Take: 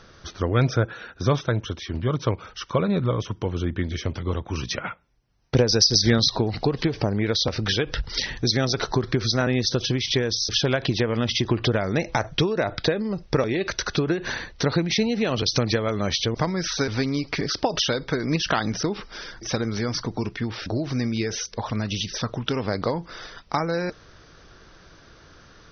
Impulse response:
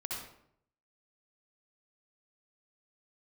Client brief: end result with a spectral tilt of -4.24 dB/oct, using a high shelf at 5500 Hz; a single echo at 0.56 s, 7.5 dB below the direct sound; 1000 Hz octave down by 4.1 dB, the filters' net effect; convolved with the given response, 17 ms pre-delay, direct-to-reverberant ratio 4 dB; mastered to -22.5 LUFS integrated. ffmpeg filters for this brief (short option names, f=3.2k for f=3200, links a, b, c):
-filter_complex "[0:a]equalizer=f=1k:t=o:g=-6,highshelf=f=5.5k:g=6,aecho=1:1:560:0.422,asplit=2[a][b];[1:a]atrim=start_sample=2205,adelay=17[c];[b][c]afir=irnorm=-1:irlink=0,volume=-5.5dB[d];[a][d]amix=inputs=2:normalize=0,volume=-0.5dB"